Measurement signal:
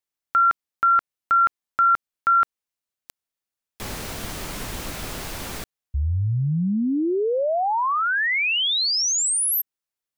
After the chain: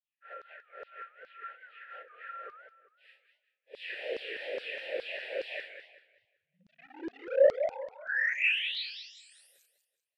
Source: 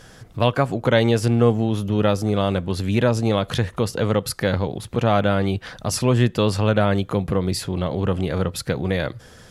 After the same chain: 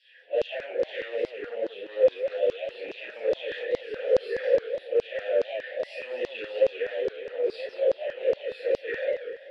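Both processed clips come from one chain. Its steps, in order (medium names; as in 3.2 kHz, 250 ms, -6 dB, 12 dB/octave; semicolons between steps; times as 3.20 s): phase randomisation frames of 200 ms; high-pass 230 Hz 24 dB/octave; peaking EQ 420 Hz +2.5 dB 0.77 oct; in parallel at -1.5 dB: compression, threshold -28 dBFS; on the sum: peak limiter -11.5 dBFS; static phaser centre 2.8 kHz, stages 4; hard clipper -22 dBFS; vowel filter e; LFO high-pass saw down 2.4 Hz 380–4900 Hz; distance through air 66 m; modulated delay 192 ms, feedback 33%, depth 214 cents, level -9.5 dB; trim +4.5 dB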